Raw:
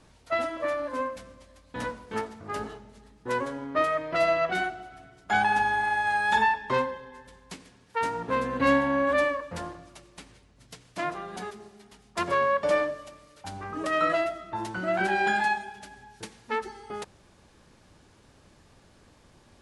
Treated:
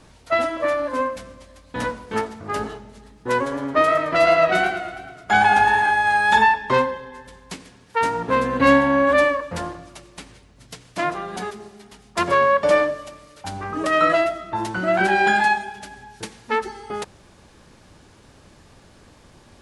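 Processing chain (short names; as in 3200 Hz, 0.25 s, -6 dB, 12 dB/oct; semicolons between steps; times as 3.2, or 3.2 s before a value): 3.4–5.91 warbling echo 0.111 s, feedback 54%, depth 91 cents, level -8.5 dB; gain +7.5 dB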